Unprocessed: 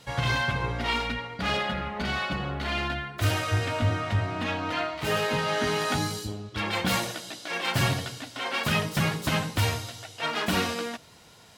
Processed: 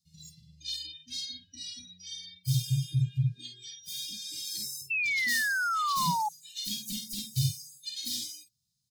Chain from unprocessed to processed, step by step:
change of speed 1.3×
elliptic band-stop filter 160–4,200 Hz, stop band 70 dB
double-tracking delay 50 ms −5 dB
sound drawn into the spectrogram fall, 0:04.90–0:06.29, 830–2,700 Hz −29 dBFS
noise reduction from a noise print of the clip's start 25 dB

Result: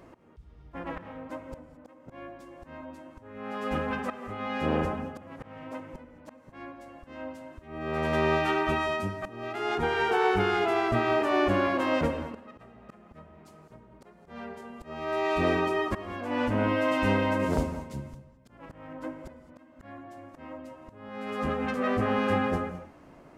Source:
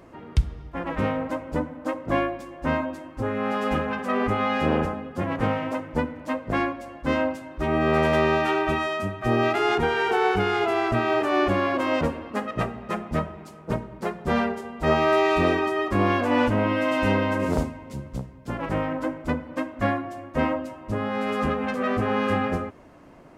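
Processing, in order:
volume swells 750 ms
reverb whose tail is shaped and stops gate 240 ms rising, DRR 11 dB
level −3 dB

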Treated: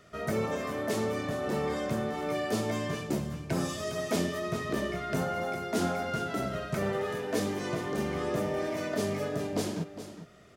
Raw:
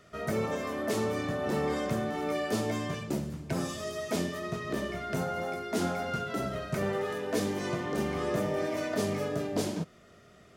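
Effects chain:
speech leveller 2 s
single-tap delay 410 ms −12 dB

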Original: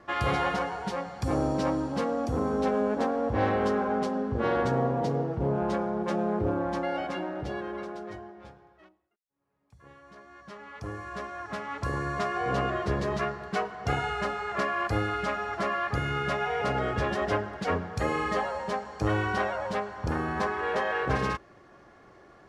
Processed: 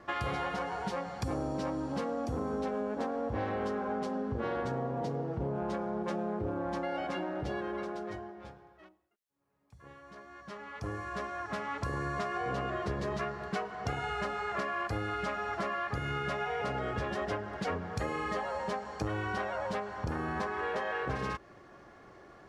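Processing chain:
downward compressor, threshold −31 dBFS, peak gain reduction 10 dB

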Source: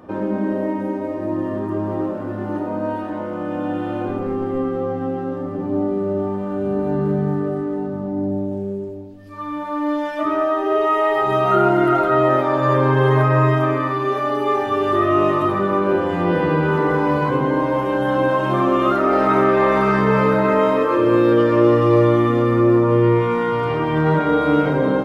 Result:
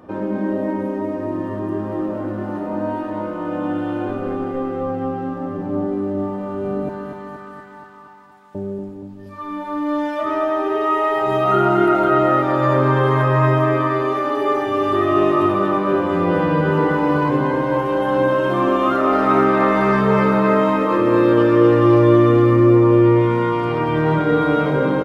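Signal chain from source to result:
0:06.89–0:08.55: Butterworth high-pass 880 Hz 72 dB per octave
on a send: repeating echo 237 ms, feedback 59%, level −7 dB
on the sum: level −1 dB

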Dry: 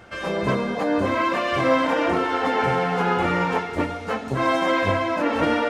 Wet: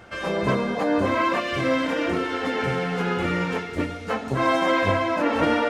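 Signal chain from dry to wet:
0:01.40–0:04.10: parametric band 870 Hz −10 dB 1.1 octaves

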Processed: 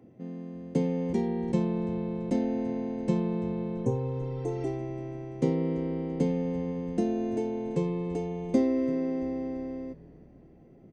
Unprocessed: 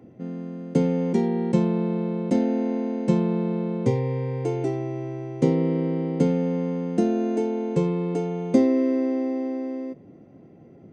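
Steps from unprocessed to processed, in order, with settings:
notch filter 1,400 Hz, Q 22
echo with shifted repeats 337 ms, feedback 49%, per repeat −97 Hz, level −19.5 dB
healed spectral selection 0:03.79–0:04.64, 1,100–5,600 Hz both
level −6 dB

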